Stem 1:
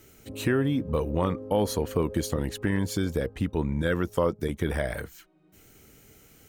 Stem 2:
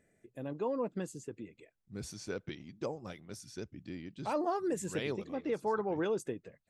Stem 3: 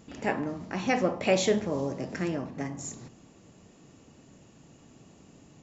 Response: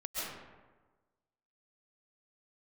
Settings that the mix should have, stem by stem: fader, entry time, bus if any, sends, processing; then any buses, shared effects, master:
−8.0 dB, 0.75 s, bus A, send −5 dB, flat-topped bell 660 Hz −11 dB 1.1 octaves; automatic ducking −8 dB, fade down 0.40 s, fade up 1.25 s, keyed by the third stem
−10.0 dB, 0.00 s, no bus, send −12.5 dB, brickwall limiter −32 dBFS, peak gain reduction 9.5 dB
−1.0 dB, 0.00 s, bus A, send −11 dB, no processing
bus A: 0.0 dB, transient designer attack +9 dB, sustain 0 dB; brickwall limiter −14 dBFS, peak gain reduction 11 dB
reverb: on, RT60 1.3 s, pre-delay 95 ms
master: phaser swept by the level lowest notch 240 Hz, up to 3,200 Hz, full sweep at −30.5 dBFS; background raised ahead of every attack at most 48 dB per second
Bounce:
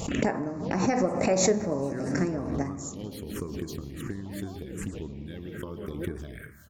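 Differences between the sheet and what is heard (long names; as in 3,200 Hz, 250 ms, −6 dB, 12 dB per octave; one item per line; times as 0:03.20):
stem 1: entry 0.75 s → 1.45 s
reverb return −7.5 dB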